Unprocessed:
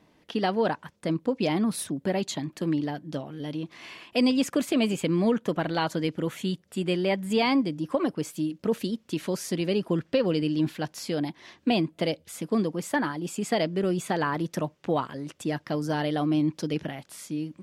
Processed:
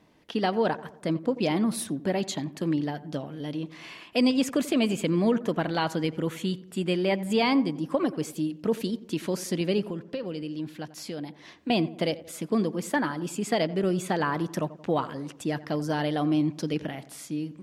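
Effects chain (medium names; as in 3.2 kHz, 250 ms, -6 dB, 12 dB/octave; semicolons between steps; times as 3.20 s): 9.87–11.70 s: compression 2:1, threshold -38 dBFS, peak gain reduction 10.5 dB; filtered feedback delay 88 ms, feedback 54%, low-pass 1.6 kHz, level -16 dB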